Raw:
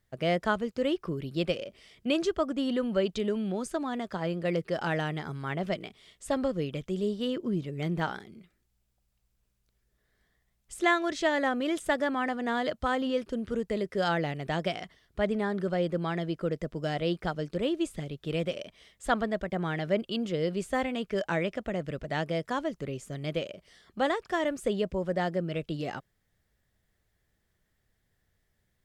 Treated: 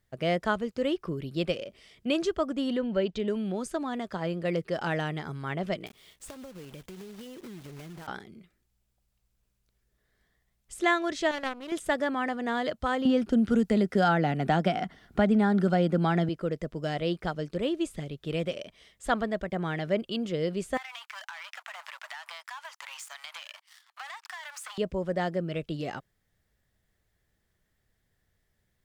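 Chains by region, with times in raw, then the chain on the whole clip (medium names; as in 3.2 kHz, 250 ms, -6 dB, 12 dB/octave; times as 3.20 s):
2.77–3.28 s: Butterworth band-stop 1.2 kHz, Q 7.7 + distance through air 93 m
5.86–8.08 s: block-companded coder 3-bit + compression 16:1, threshold -40 dBFS
11.31–11.72 s: power-law waveshaper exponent 2 + hysteresis with a dead band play -48.5 dBFS
13.05–16.29 s: small resonant body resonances 220/760/1400 Hz, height 10 dB, ringing for 25 ms + three bands compressed up and down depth 70%
20.77–24.78 s: waveshaping leveller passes 3 + steep high-pass 840 Hz 48 dB/octave + compression 16:1, threshold -37 dBFS
whole clip: none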